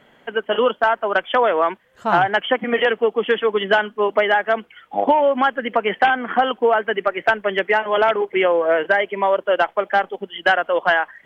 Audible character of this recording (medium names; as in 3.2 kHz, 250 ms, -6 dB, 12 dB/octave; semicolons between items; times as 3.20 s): noise floor -54 dBFS; spectral tilt -1.0 dB/octave